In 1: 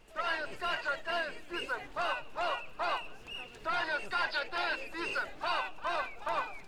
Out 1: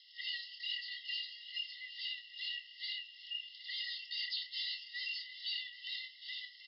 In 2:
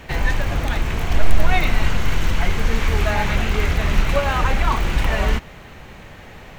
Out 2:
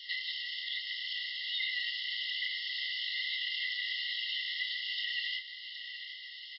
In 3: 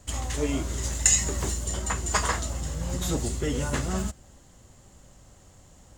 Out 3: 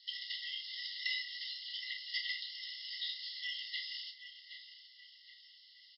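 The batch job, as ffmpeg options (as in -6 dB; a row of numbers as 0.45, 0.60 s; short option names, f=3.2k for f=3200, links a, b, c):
-filter_complex "[0:a]asplit=2[a][b];[b]adelay=768,lowpass=f=2.7k:p=1,volume=-12.5dB,asplit=2[c][d];[d]adelay=768,lowpass=f=2.7k:p=1,volume=0.55,asplit=2[e][f];[f]adelay=768,lowpass=f=2.7k:p=1,volume=0.55,asplit=2[g][h];[h]adelay=768,lowpass=f=2.7k:p=1,volume=0.55,asplit=2[i][j];[j]adelay=768,lowpass=f=2.7k:p=1,volume=0.55,asplit=2[k][l];[l]adelay=768,lowpass=f=2.7k:p=1,volume=0.55[m];[a][c][e][g][i][k][m]amix=inputs=7:normalize=0,acrossover=split=3700[n][o];[o]acompressor=threshold=-41dB:ratio=4:attack=1:release=60[p];[n][p]amix=inputs=2:normalize=0,acrusher=bits=9:mix=0:aa=0.000001,afftfilt=real='re*between(b*sr/4096,1900,5400)':imag='im*between(b*sr/4096,1900,5400)':win_size=4096:overlap=0.75,asuperstop=centerf=2400:order=20:qfactor=3.5,highshelf=f=3.3k:g=11.5,asplit=2[q][r];[r]adelay=29,volume=-8dB[s];[q][s]amix=inputs=2:normalize=0,acompressor=threshold=-42dB:ratio=1.5"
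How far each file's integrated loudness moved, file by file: -5.5, -12.5, -13.0 LU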